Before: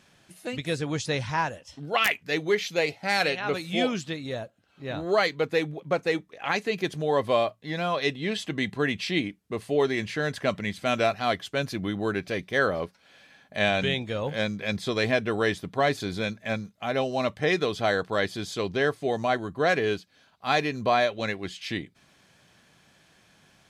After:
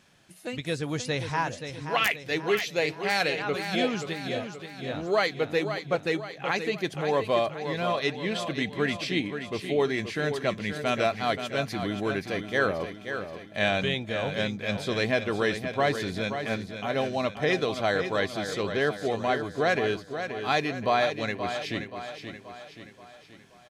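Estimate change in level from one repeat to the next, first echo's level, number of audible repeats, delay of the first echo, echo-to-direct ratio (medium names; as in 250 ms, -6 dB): -6.0 dB, -8.5 dB, 5, 528 ms, -7.5 dB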